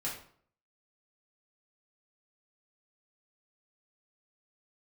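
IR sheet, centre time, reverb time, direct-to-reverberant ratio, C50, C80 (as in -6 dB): 32 ms, 0.55 s, -7.5 dB, 5.5 dB, 9.5 dB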